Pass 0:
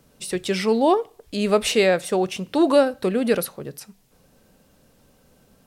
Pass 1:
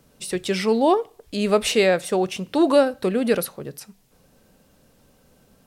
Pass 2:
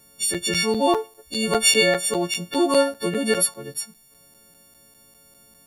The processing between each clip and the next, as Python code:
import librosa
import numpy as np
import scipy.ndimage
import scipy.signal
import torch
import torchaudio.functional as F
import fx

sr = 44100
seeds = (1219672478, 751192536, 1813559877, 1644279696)

y1 = x
y2 = fx.freq_snap(y1, sr, grid_st=4)
y2 = fx.buffer_crackle(y2, sr, first_s=0.34, period_s=0.2, block=256, kind='zero')
y2 = F.gain(torch.from_numpy(y2), -2.5).numpy()